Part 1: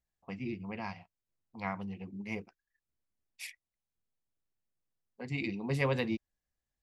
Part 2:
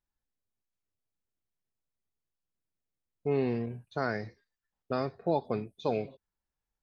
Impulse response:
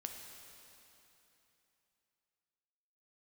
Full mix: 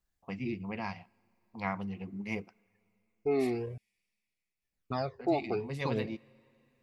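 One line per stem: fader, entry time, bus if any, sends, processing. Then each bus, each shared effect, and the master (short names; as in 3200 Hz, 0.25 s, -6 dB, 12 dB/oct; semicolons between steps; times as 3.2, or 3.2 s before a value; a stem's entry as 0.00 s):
+2.0 dB, 0.00 s, send -22.5 dB, auto duck -9 dB, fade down 0.80 s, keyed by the second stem
+2.5 dB, 0.00 s, muted 3.78–4.62, no send, phaser stages 12, 0.51 Hz, lowest notch 160–2100 Hz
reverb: on, RT60 3.2 s, pre-delay 4 ms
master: dry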